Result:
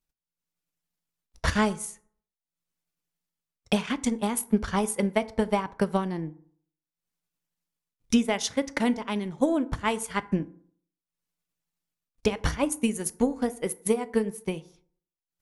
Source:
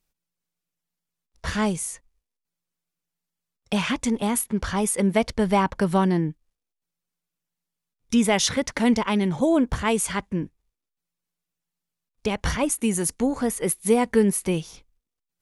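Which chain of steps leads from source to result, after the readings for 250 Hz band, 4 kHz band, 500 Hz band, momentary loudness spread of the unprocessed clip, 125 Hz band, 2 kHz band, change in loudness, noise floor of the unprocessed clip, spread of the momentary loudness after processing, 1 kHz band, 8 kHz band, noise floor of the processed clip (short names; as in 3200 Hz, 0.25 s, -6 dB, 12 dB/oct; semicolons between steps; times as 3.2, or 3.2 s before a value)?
-4.0 dB, -4.5 dB, -4.0 dB, 10 LU, -5.5 dB, -3.5 dB, -4.5 dB, -85 dBFS, 6 LU, -4.0 dB, -6.5 dB, under -85 dBFS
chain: transient shaper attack +10 dB, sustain -9 dB; AGC gain up to 8 dB; FDN reverb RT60 0.56 s, low-frequency decay 1×, high-frequency decay 0.5×, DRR 13 dB; gain -9 dB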